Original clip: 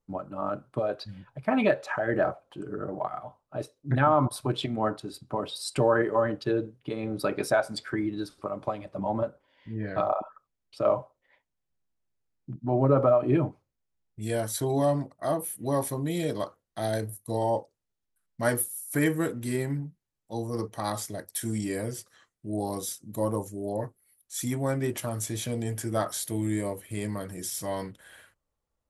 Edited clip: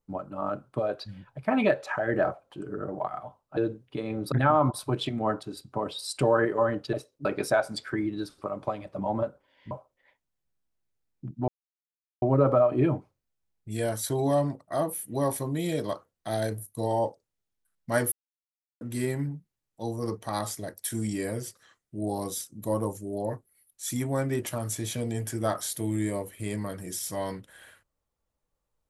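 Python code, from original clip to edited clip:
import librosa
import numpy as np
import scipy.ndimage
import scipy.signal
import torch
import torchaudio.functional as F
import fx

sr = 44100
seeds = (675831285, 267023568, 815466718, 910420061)

y = fx.edit(x, sr, fx.swap(start_s=3.57, length_s=0.32, other_s=6.5, other_length_s=0.75),
    fx.cut(start_s=9.71, length_s=1.25),
    fx.insert_silence(at_s=12.73, length_s=0.74),
    fx.silence(start_s=18.63, length_s=0.69), tone=tone)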